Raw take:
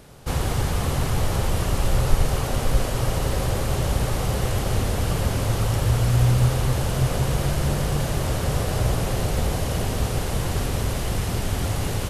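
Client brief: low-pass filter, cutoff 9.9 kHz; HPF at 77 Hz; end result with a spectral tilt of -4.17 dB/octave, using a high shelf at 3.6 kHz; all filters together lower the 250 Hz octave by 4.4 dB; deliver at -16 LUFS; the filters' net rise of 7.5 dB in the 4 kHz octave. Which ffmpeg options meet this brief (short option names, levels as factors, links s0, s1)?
-af "highpass=77,lowpass=9900,equalizer=f=250:t=o:g=-7.5,highshelf=f=3600:g=7,equalizer=f=4000:t=o:g=5,volume=2.66"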